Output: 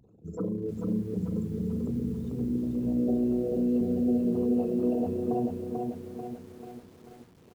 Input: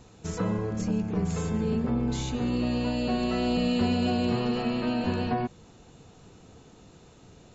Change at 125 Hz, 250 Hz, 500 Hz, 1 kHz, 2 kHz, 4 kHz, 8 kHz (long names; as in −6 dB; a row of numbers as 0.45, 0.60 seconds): −4.0 dB, 0.0 dB, +0.5 dB, −8.5 dB, below −20 dB, below −20 dB, can't be measured